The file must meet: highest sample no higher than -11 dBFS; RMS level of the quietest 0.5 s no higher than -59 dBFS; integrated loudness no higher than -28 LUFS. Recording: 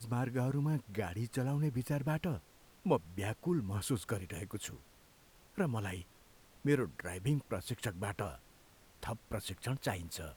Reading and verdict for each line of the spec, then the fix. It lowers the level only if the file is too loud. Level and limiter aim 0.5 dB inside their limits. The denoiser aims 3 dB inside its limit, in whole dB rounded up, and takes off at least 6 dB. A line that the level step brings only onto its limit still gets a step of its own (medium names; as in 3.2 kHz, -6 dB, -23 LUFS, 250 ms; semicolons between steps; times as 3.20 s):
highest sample -18.0 dBFS: pass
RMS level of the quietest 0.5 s -63 dBFS: pass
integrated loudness -37.5 LUFS: pass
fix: none needed